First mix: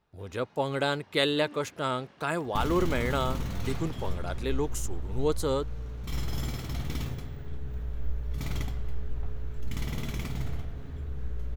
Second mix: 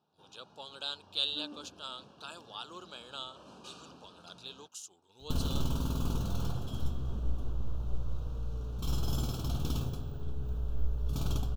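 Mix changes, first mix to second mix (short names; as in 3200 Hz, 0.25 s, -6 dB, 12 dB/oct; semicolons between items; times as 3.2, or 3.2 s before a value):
speech: add band-pass 3900 Hz, Q 1.6; second sound: entry +2.75 s; master: add Butterworth band-stop 2000 Hz, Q 1.5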